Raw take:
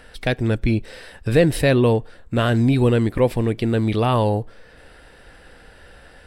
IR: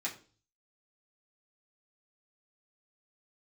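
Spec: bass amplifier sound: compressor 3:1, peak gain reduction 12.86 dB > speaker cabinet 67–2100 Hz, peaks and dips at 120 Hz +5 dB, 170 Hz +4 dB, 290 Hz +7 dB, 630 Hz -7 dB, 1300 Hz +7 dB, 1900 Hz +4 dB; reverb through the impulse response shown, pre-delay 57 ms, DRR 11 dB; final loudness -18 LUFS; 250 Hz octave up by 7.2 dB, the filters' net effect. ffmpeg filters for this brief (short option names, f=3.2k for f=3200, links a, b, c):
-filter_complex "[0:a]equalizer=f=250:t=o:g=4.5,asplit=2[a][b];[1:a]atrim=start_sample=2205,adelay=57[c];[b][c]afir=irnorm=-1:irlink=0,volume=-14dB[d];[a][d]amix=inputs=2:normalize=0,acompressor=threshold=-26dB:ratio=3,highpass=f=67:w=0.5412,highpass=f=67:w=1.3066,equalizer=f=120:t=q:w=4:g=5,equalizer=f=170:t=q:w=4:g=4,equalizer=f=290:t=q:w=4:g=7,equalizer=f=630:t=q:w=4:g=-7,equalizer=f=1.3k:t=q:w=4:g=7,equalizer=f=1.9k:t=q:w=4:g=4,lowpass=f=2.1k:w=0.5412,lowpass=f=2.1k:w=1.3066,volume=6.5dB"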